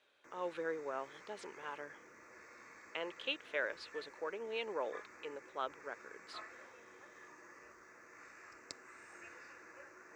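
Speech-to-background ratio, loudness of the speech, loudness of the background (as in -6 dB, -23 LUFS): 12.5 dB, -43.0 LUFS, -55.5 LUFS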